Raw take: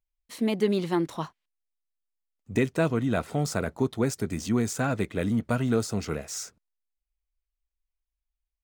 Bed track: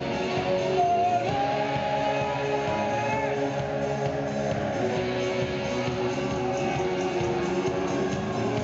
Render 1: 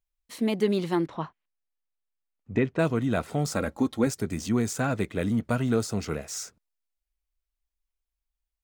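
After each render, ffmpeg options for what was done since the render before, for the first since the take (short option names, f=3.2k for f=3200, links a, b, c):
-filter_complex "[0:a]asettb=1/sr,asplit=3[a][b][c];[a]atrim=end=1.064[d];[b]atrim=start=1.06:end=2.79,asetpts=PTS-STARTPTS,afade=t=in:d=0.004:c=qsin,afade=t=out:st=1.726:d=0.004:c=qsin,lowpass=2.6k[e];[c]atrim=start=2.786[f];[d][e]acrossfade=d=0.004:c1=hsin:c2=qsin[g];[g][f]acrossfade=d=0.004:c1=qsin:c2=hsin,asettb=1/sr,asplit=3[h][i][j];[h]atrim=end=3.544[k];[i]atrim=start=3.54:end=4.07,asetpts=PTS-STARTPTS,afade=t=in:d=0.004:c=qsin,afade=t=out:st=0.526:d=0.004:c=qsin,aecho=1:1:3.7:0.6,atrim=end_sample=23373[l];[j]atrim=start=4.066[m];[k][l]acrossfade=d=0.004:c1=hsin:c2=qsin[n];[n][m]acrossfade=d=0.004:c1=qsin:c2=hsin"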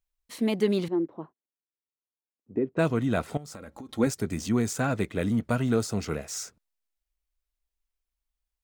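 -filter_complex "[0:a]asettb=1/sr,asplit=3[a][b][c];[a]atrim=end=0.884[d];[b]atrim=start=0.88:end=2.77,asetpts=PTS-STARTPTS,afade=t=in:d=0.004:c=qsin,afade=t=out:st=1.886:d=0.004:c=qsin,bandpass=f=350:t=q:w=1.7[e];[c]atrim=start=2.766[f];[d][e]acrossfade=d=0.004:c1=hsin:c2=qsin[g];[g][f]acrossfade=d=0.004:c1=qsin:c2=hsin,asettb=1/sr,asplit=3[h][i][j];[h]atrim=end=3.374[k];[i]atrim=start=3.37:end=3.89,asetpts=PTS-STARTPTS,afade=t=in:d=0.004:c=qsin,afade=t=out:st=0.516:d=0.004:c=qsin,acompressor=threshold=-38dB:ratio=12:attack=3.2:release=140:knee=1:detection=peak[l];[j]atrim=start=3.886[m];[k][l]acrossfade=d=0.004:c1=hsin:c2=qsin[n];[n][m]acrossfade=d=0.004:c1=qsin:c2=hsin"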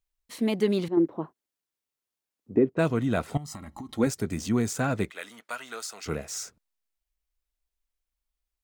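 -filter_complex "[0:a]asettb=1/sr,asplit=3[a][b][c];[a]atrim=end=0.974[d];[b]atrim=start=0.97:end=2.7,asetpts=PTS-STARTPTS,afade=t=in:d=0.004:c=qsin,afade=t=out:st=1.726:d=0.004:c=qsin,acontrast=53[e];[c]atrim=start=2.696[f];[d][e]acrossfade=d=0.004:c1=hsin:c2=qsin[g];[g][f]acrossfade=d=0.004:c1=qsin:c2=hsin,asettb=1/sr,asplit=3[h][i][j];[h]atrim=end=3.354[k];[i]atrim=start=3.35:end=3.93,asetpts=PTS-STARTPTS,afade=t=in:d=0.004:c=qsin,afade=t=out:st=0.576:d=0.004:c=qsin,aecho=1:1:1:0.99,atrim=end_sample=25578[l];[j]atrim=start=3.926[m];[k][l]acrossfade=d=0.004:c1=hsin:c2=qsin[n];[n][m]acrossfade=d=0.004:c1=qsin:c2=hsin,asettb=1/sr,asplit=3[o][p][q];[o]atrim=end=5.104[r];[p]atrim=start=5.1:end=6.06,asetpts=PTS-STARTPTS,afade=t=in:d=0.004:c=qsin,afade=t=out:st=0.956:d=0.004:c=qsin,highpass=1.1k[s];[q]atrim=start=6.056[t];[r][s]acrossfade=d=0.004:c1=hsin:c2=qsin[u];[u][t]acrossfade=d=0.004:c1=qsin:c2=hsin"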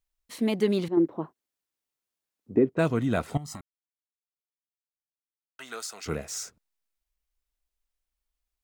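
-filter_complex "[0:a]asplit=3[a][b][c];[a]atrim=end=3.61,asetpts=PTS-STARTPTS,afade=t=out:st=3.606:d=0.004:c=hsin[d];[b]atrim=start=3.61:end=5.59,asetpts=PTS-STARTPTS,volume=0[e];[c]atrim=start=5.59,asetpts=PTS-STARTPTS,afade=t=in:d=0.004:c=hsin[f];[d][e][f]concat=n=3:v=0:a=1"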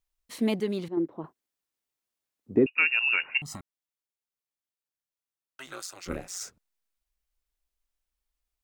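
-filter_complex "[0:a]asettb=1/sr,asplit=3[a][b][c];[a]atrim=end=2.664[d];[b]atrim=start=2.66:end=3.42,asetpts=PTS-STARTPTS,afade=t=in:d=0.004:c=qsin,afade=t=out:st=0.756:d=0.004:c=qsin,lowpass=f=2.5k:t=q:w=0.5098,lowpass=f=2.5k:t=q:w=0.6013,lowpass=f=2.5k:t=q:w=0.9,lowpass=f=2.5k:t=q:w=2.563,afreqshift=-2900[e];[c]atrim=start=3.416[f];[d][e]acrossfade=d=0.004:c1=hsin:c2=qsin[g];[g][f]acrossfade=d=0.004:c1=qsin:c2=hsin,asplit=3[h][i][j];[h]afade=t=out:st=5.66:d=0.02[k];[i]aeval=exprs='val(0)*sin(2*PI*91*n/s)':c=same,afade=t=in:st=5.66:d=0.02,afade=t=out:st=6.39:d=0.02[l];[j]afade=t=in:st=6.39:d=0.02[m];[k][l][m]amix=inputs=3:normalize=0,asplit=3[n][o][p];[n]atrim=end=0.602[q];[o]atrim=start=0.598:end=1.242,asetpts=PTS-STARTPTS,volume=-5.5dB[r];[p]atrim=start=1.238[s];[q][r]acrossfade=d=0.004:c1=hsin:c2=hsin[t];[t][s]acrossfade=d=0.004:c1=hsin:c2=hsin"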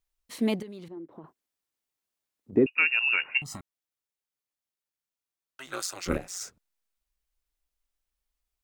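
-filter_complex "[0:a]asettb=1/sr,asplit=3[a][b][c];[a]atrim=end=0.624[d];[b]atrim=start=0.62:end=2.53,asetpts=PTS-STARTPTS,afade=t=in:d=0.004:c=qsin,afade=t=out:st=1.906:d=0.004:c=qsin,acompressor=threshold=-41dB:ratio=4:attack=3.2:release=140:knee=1:detection=peak[e];[c]atrim=start=2.526[f];[d][e]acrossfade=d=0.004:c1=hsin:c2=qsin[g];[g][f]acrossfade=d=0.004:c1=qsin:c2=hsin,asettb=1/sr,asplit=3[h][i][j];[h]atrim=end=3.174[k];[i]atrim=start=3.17:end=3.58,asetpts=PTS-STARTPTS,afade=t=in:d=0.004:c=qsin,afade=t=out:st=0.406:d=0.004:c=qsin,asplit=2[l][m];[m]adelay=16,volume=-12.5dB[n];[l][n]amix=inputs=2:normalize=0,atrim=end_sample=18081[o];[j]atrim=start=3.576[p];[k][o]acrossfade=d=0.004:c1=hsin:c2=qsin[q];[q][p]acrossfade=d=0.004:c1=qsin:c2=hsin,asettb=1/sr,asplit=3[r][s][t];[r]atrim=end=5.734[u];[s]atrim=start=5.73:end=6.18,asetpts=PTS-STARTPTS,afade=t=in:d=0.004:c=qsin,afade=t=out:st=0.446:d=0.004:c=qsin,acontrast=53[v];[t]atrim=start=6.176[w];[u][v]acrossfade=d=0.004:c1=hsin:c2=qsin[x];[x][w]acrossfade=d=0.004:c1=qsin:c2=hsin"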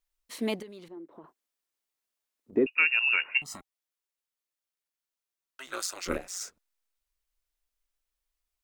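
-af "equalizer=f=110:t=o:w=1.7:g=-14,bandreject=f=790:w=19"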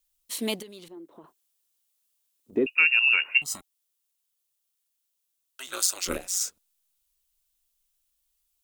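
-af "aexciter=amount=3.4:drive=2.1:freq=2.8k"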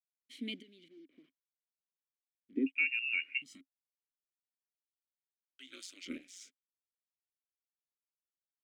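-filter_complex "[0:a]acrusher=bits=8:mix=0:aa=0.5,asplit=3[a][b][c];[a]bandpass=f=270:t=q:w=8,volume=0dB[d];[b]bandpass=f=2.29k:t=q:w=8,volume=-6dB[e];[c]bandpass=f=3.01k:t=q:w=8,volume=-9dB[f];[d][e][f]amix=inputs=3:normalize=0"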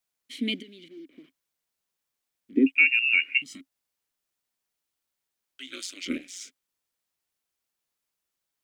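-af "volume=12dB"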